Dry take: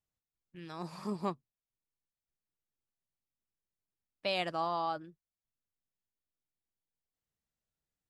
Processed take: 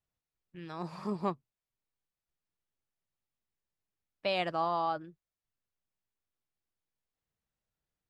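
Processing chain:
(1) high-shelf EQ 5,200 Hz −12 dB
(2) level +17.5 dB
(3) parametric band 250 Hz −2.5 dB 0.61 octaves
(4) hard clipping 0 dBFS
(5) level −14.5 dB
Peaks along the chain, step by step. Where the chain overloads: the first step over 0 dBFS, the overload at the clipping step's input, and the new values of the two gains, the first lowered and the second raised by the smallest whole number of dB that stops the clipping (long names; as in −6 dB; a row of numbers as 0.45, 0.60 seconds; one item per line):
−21.5, −4.0, −4.5, −4.5, −19.0 dBFS
no step passes full scale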